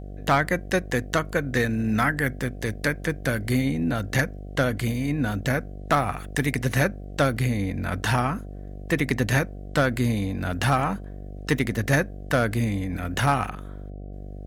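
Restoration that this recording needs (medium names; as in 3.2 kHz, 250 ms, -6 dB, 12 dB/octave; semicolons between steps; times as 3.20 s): clip repair -11 dBFS; de-hum 49 Hz, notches 15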